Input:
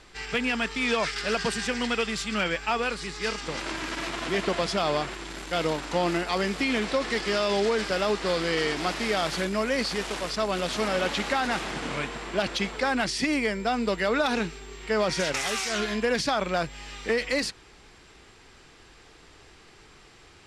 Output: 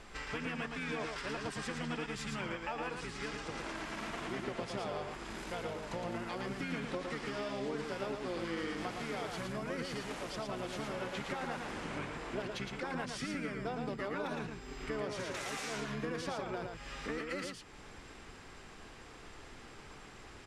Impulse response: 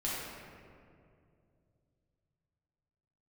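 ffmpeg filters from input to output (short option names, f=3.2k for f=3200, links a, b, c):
-filter_complex "[0:a]equalizer=f=4.4k:w=1.3:g=-5.5,acompressor=threshold=-42dB:ratio=3,asplit=2[a][b];[b]asetrate=29433,aresample=44100,atempo=1.49831,volume=-3dB[c];[a][c]amix=inputs=2:normalize=0,asplit=2[d][e];[e]aecho=0:1:113:0.596[f];[d][f]amix=inputs=2:normalize=0,volume=-1.5dB"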